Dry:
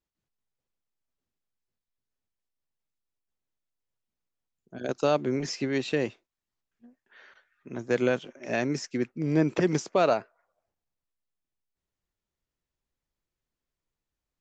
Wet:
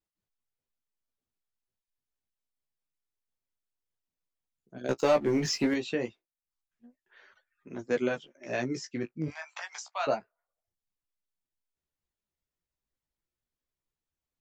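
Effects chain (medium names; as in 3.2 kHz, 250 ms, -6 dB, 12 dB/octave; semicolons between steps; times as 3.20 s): 9.28–10.07 s: steep high-pass 730 Hz 48 dB/octave; reverb removal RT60 0.56 s; 4.88–5.74 s: waveshaping leveller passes 2; flange 0.27 Hz, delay 9.4 ms, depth 9.7 ms, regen -17%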